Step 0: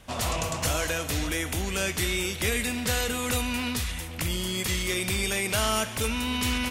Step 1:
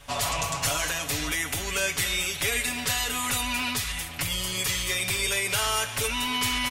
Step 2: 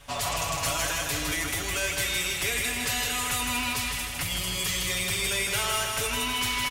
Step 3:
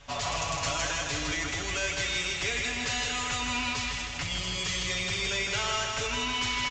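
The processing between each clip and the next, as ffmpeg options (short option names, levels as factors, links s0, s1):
-filter_complex "[0:a]equalizer=f=230:t=o:w=2.2:g=-9,asplit=2[s0][s1];[s1]alimiter=limit=0.0668:level=0:latency=1:release=228,volume=0.944[s2];[s0][s2]amix=inputs=2:normalize=0,aecho=1:1:7.1:0.96,volume=0.668"
-filter_complex "[0:a]acrusher=bits=7:mode=log:mix=0:aa=0.000001,asoftclip=type=tanh:threshold=0.119,asplit=2[s0][s1];[s1]aecho=0:1:159|318|477|636|795|954|1113|1272:0.596|0.345|0.2|0.116|0.0674|0.0391|0.0227|0.0132[s2];[s0][s2]amix=inputs=2:normalize=0,volume=0.841"
-af "volume=0.841" -ar 16000 -c:a pcm_mulaw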